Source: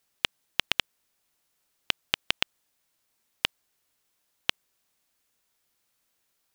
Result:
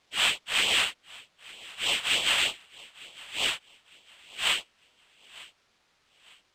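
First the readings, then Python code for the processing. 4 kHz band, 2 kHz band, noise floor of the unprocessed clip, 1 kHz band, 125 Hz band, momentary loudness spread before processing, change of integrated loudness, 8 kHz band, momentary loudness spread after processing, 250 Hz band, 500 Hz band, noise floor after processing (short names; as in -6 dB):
+5.0 dB, +5.5 dB, -76 dBFS, +4.5 dB, -2.5 dB, 5 LU, +4.5 dB, +11.5 dB, 22 LU, 0.0 dB, +4.0 dB, -70 dBFS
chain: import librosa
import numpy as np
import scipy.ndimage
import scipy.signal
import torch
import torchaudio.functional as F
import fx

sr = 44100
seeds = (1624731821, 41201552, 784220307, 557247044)

p1 = fx.phase_scramble(x, sr, seeds[0], window_ms=200)
p2 = fx.low_shelf(p1, sr, hz=390.0, db=-11.0)
p3 = fx.filter_lfo_notch(p2, sr, shape='sine', hz=3.3, low_hz=290.0, high_hz=1700.0, q=1.0)
p4 = fx.peak_eq(p3, sr, hz=520.0, db=3.5, octaves=1.4)
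p5 = p4 + fx.echo_feedback(p4, sr, ms=905, feedback_pct=35, wet_db=-21.0, dry=0)
p6 = (np.kron(p5[::4], np.eye(4)[0]) * 4)[:len(p5)]
p7 = scipy.signal.sosfilt(scipy.signal.butter(2, 4000.0, 'lowpass', fs=sr, output='sos'), p6)
p8 = fx.rider(p7, sr, range_db=10, speed_s=0.5)
p9 = p7 + (p8 * 10.0 ** (1.0 / 20.0))
y = p9 * 10.0 ** (2.0 / 20.0)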